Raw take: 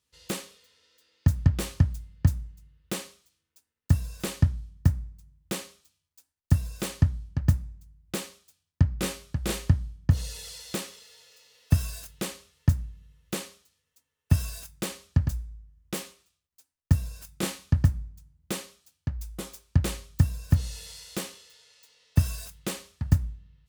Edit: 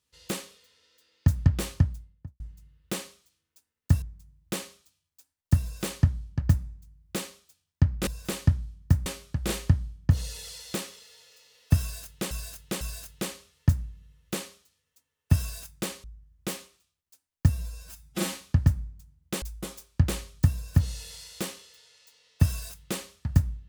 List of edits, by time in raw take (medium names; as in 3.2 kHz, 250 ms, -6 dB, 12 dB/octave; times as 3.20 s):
1.68–2.40 s: studio fade out
4.02–5.01 s: move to 9.06 s
11.81–12.31 s: loop, 3 plays
15.04–15.50 s: delete
16.95–17.51 s: stretch 1.5×
18.60–19.18 s: delete